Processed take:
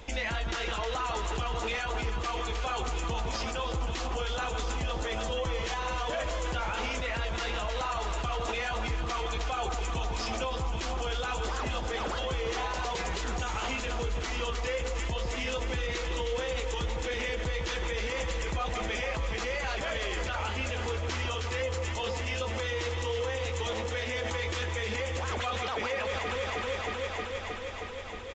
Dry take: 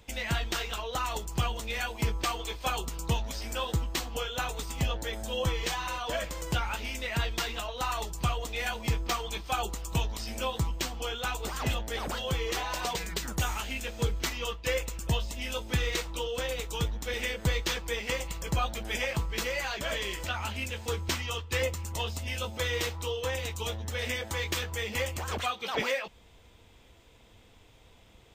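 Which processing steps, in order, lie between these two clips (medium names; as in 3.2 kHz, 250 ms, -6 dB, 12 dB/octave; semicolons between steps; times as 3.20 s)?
peaking EQ 5.1 kHz -5.5 dB 2.3 oct; echo whose repeats swap between lows and highs 157 ms, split 1.5 kHz, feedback 88%, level -10 dB; in parallel at -0.5 dB: compressor with a negative ratio -41 dBFS; on the sum: peaking EQ 130 Hz -9 dB 1.4 oct; peak limiter -25 dBFS, peak gain reduction 8 dB; resampled via 16 kHz; trim +2 dB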